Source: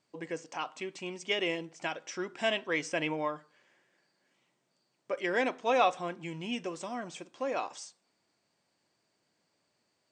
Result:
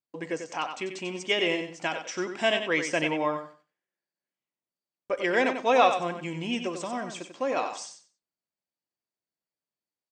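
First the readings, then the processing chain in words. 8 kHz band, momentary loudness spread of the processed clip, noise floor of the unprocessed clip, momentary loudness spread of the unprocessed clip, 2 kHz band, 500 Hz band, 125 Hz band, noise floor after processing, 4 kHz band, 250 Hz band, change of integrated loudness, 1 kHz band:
+5.5 dB, 12 LU, -78 dBFS, 12 LU, +5.5 dB, +5.5 dB, +5.5 dB, under -85 dBFS, +5.5 dB, +6.0 dB, +5.5 dB, +5.5 dB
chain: gate -56 dBFS, range -27 dB; on a send: feedback delay 93 ms, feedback 21%, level -8 dB; on the sum: trim +5 dB

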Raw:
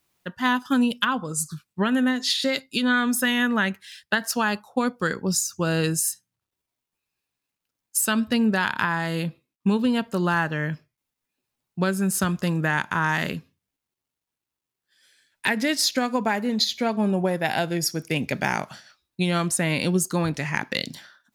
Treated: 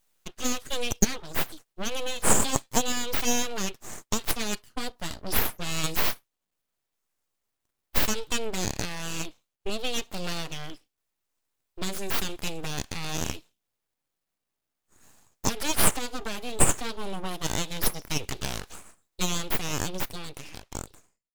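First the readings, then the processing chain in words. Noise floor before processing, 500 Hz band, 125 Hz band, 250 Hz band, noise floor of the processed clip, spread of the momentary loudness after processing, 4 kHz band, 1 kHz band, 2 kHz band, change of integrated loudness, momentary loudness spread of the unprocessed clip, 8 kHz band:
under -85 dBFS, -6.5 dB, -8.0 dB, -11.5 dB, -84 dBFS, 16 LU, -4.0 dB, -7.0 dB, -10.0 dB, -5.0 dB, 7 LU, +0.5 dB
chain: fade out at the end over 2.13 s; resonant high shelf 2.4 kHz +9.5 dB, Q 3; full-wave rectifier; trim -7 dB

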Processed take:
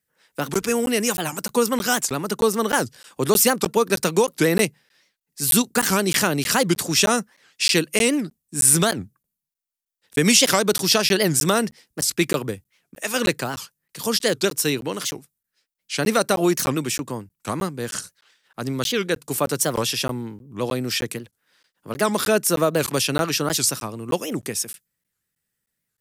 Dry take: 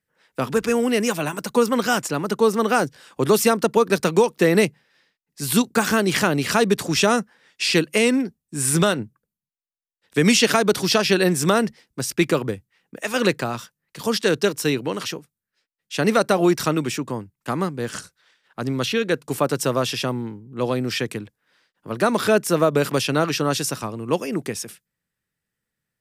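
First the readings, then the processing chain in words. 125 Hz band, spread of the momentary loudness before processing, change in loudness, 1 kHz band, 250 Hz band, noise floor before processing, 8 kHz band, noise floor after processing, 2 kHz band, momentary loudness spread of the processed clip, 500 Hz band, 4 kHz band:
-2.0 dB, 12 LU, 0.0 dB, -1.5 dB, -2.0 dB, -85 dBFS, +6.0 dB, -82 dBFS, -1.0 dB, 13 LU, -2.0 dB, +2.0 dB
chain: treble shelf 5.2 kHz +11.5 dB; crackling interface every 0.31 s, samples 512, zero, from 0.55 s; warped record 78 rpm, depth 250 cents; trim -2 dB

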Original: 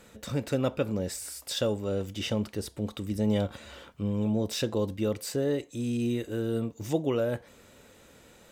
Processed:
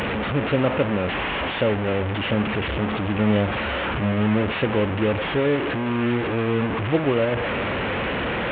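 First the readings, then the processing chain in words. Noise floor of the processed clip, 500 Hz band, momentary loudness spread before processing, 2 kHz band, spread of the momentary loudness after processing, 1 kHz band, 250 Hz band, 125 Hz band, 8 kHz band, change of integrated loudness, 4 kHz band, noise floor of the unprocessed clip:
-26 dBFS, +8.0 dB, 7 LU, +19.0 dB, 4 LU, +17.0 dB, +7.5 dB, +8.0 dB, under -25 dB, +8.0 dB, +8.0 dB, -56 dBFS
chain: one-bit delta coder 16 kbps, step -25 dBFS; high-pass 45 Hz; repeats whose band climbs or falls 374 ms, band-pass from 770 Hz, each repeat 0.7 oct, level -12 dB; trim +6.5 dB

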